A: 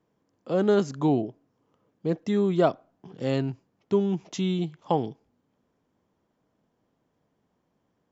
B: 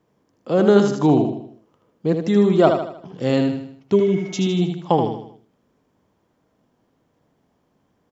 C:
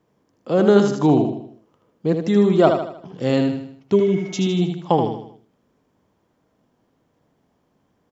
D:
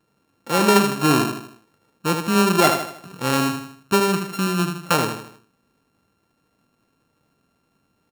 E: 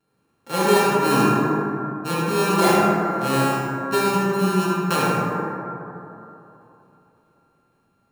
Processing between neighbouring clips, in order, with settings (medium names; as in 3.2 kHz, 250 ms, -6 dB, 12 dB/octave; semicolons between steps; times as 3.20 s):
spectral replace 3.98–4.46 s, 730–2300 Hz after; feedback delay 78 ms, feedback 44%, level -6 dB; trim +6.5 dB
no audible change
sorted samples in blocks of 32 samples; trim -2 dB
feedback comb 820 Hz, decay 0.15 s, harmonics all, mix 60%; plate-style reverb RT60 3.1 s, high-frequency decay 0.25×, DRR -7.5 dB